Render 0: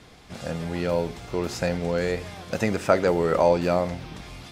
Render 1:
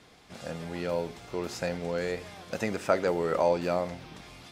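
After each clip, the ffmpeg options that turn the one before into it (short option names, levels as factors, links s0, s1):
-af "lowshelf=f=120:g=-9.5,volume=0.562"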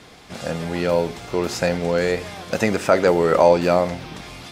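-af "alimiter=level_in=3.98:limit=0.891:release=50:level=0:latency=1,volume=0.891"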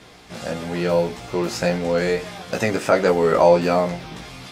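-af "flanger=delay=15.5:depth=2.4:speed=1.6,volume=1.33"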